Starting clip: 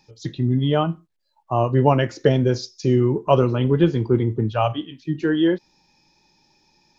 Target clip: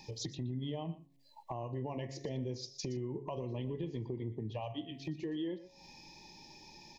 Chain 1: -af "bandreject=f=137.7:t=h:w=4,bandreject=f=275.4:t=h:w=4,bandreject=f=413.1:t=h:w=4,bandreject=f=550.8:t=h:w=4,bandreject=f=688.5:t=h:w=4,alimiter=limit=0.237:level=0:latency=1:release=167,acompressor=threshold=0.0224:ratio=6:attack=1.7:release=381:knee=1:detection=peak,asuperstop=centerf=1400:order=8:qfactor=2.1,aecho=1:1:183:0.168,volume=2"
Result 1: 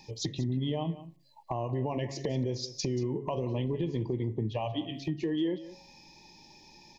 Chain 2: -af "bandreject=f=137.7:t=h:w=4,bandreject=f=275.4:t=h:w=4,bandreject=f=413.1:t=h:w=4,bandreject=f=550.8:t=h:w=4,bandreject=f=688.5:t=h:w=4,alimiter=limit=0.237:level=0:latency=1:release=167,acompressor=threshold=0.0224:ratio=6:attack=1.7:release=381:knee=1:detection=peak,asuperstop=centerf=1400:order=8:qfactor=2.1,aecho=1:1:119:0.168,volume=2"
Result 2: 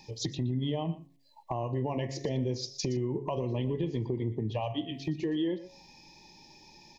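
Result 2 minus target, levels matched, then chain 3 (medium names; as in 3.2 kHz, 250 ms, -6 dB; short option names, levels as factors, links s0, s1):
compression: peak gain reduction -7.5 dB
-af "bandreject=f=137.7:t=h:w=4,bandreject=f=275.4:t=h:w=4,bandreject=f=413.1:t=h:w=4,bandreject=f=550.8:t=h:w=4,bandreject=f=688.5:t=h:w=4,alimiter=limit=0.237:level=0:latency=1:release=167,acompressor=threshold=0.00794:ratio=6:attack=1.7:release=381:knee=1:detection=peak,asuperstop=centerf=1400:order=8:qfactor=2.1,aecho=1:1:119:0.168,volume=2"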